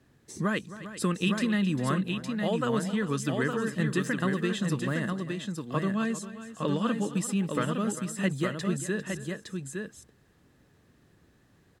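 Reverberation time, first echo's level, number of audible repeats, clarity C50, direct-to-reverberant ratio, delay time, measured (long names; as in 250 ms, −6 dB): no reverb audible, −15.5 dB, 3, no reverb audible, no reverb audible, 266 ms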